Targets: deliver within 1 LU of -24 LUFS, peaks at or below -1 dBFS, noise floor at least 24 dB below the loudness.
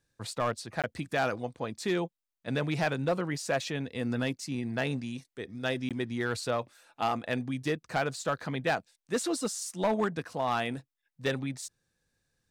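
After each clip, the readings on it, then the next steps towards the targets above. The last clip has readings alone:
clipped 0.8%; flat tops at -21.5 dBFS; dropouts 2; longest dropout 17 ms; loudness -32.5 LUFS; peak -21.5 dBFS; loudness target -24.0 LUFS
-> clip repair -21.5 dBFS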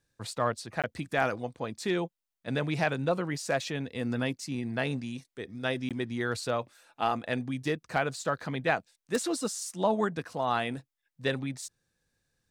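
clipped 0.0%; dropouts 2; longest dropout 17 ms
-> interpolate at 0.82/5.89, 17 ms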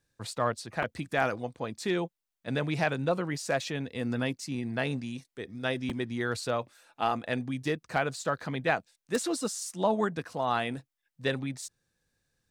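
dropouts 0; loudness -32.0 LUFS; peak -12.5 dBFS; loudness target -24.0 LUFS
-> gain +8 dB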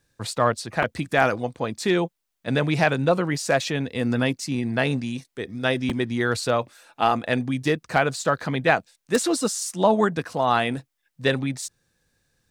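loudness -24.0 LUFS; peak -4.5 dBFS; noise floor -78 dBFS

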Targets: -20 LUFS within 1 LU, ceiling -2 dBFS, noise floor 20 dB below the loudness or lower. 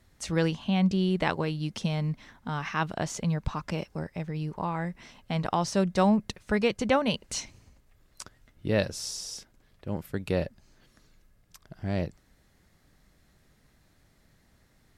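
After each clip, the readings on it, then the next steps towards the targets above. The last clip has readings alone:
loudness -29.5 LUFS; peak -9.5 dBFS; loudness target -20.0 LUFS
-> gain +9.5 dB; limiter -2 dBFS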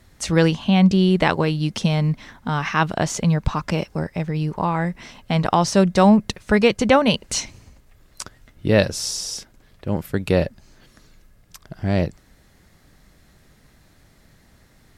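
loudness -20.5 LUFS; peak -2.0 dBFS; noise floor -55 dBFS

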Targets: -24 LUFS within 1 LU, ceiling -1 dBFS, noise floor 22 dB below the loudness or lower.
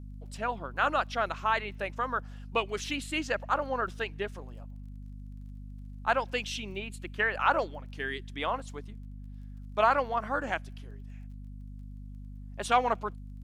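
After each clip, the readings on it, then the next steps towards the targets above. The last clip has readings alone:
ticks 21/s; hum 50 Hz; harmonics up to 250 Hz; hum level -41 dBFS; loudness -31.0 LUFS; peak -11.0 dBFS; loudness target -24.0 LUFS
-> de-click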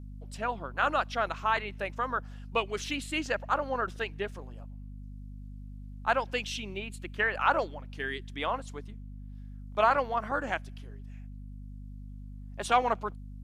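ticks 0/s; hum 50 Hz; harmonics up to 250 Hz; hum level -41 dBFS
-> de-hum 50 Hz, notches 5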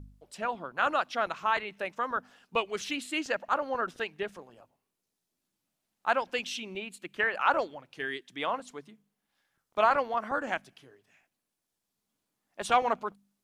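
hum none; loudness -31.0 LUFS; peak -11.0 dBFS; loudness target -24.0 LUFS
-> gain +7 dB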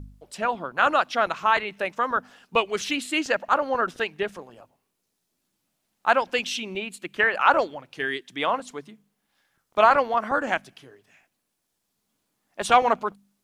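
loudness -24.0 LUFS; peak -4.0 dBFS; noise floor -78 dBFS

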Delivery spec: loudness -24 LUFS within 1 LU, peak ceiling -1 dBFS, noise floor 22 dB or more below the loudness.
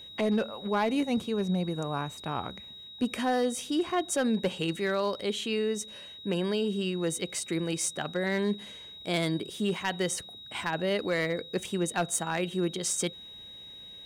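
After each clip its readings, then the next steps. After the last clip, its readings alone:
clipped 0.4%; flat tops at -20.5 dBFS; steady tone 3800 Hz; tone level -44 dBFS; loudness -30.5 LUFS; peak -20.5 dBFS; loudness target -24.0 LUFS
-> clip repair -20.5 dBFS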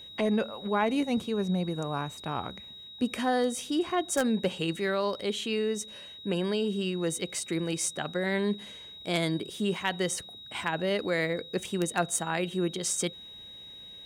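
clipped 0.0%; steady tone 3800 Hz; tone level -44 dBFS
-> notch 3800 Hz, Q 30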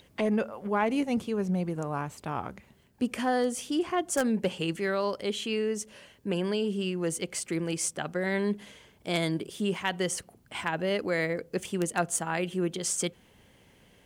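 steady tone none; loudness -30.5 LUFS; peak -11.5 dBFS; loudness target -24.0 LUFS
-> gain +6.5 dB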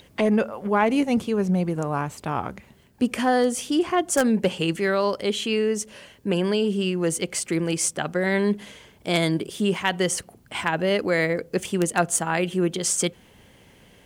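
loudness -24.0 LUFS; peak -5.0 dBFS; noise floor -54 dBFS

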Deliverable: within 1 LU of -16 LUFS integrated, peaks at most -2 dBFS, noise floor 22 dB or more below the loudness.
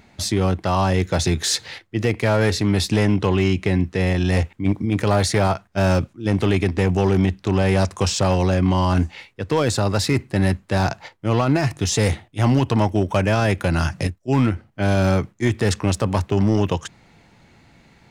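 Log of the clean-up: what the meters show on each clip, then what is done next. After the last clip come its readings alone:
clipped 1.2%; flat tops at -10.5 dBFS; loudness -20.5 LUFS; peak -10.5 dBFS; loudness target -16.0 LUFS
-> clip repair -10.5 dBFS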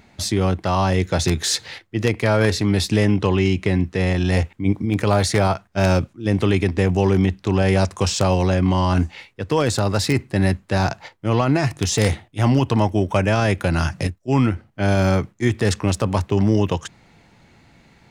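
clipped 0.0%; loudness -20.0 LUFS; peak -1.5 dBFS; loudness target -16.0 LUFS
-> gain +4 dB; limiter -2 dBFS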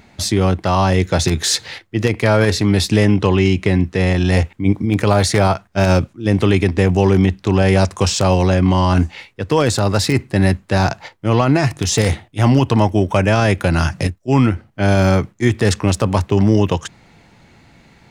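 loudness -16.0 LUFS; peak -2.0 dBFS; noise floor -52 dBFS

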